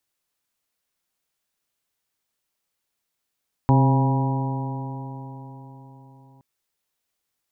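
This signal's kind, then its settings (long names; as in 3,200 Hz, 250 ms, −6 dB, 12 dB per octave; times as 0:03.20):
stiff-string partials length 2.72 s, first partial 132 Hz, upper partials −5/−14/−15/−17/−9.5/−9 dB, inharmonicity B 0.0018, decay 4.35 s, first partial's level −14 dB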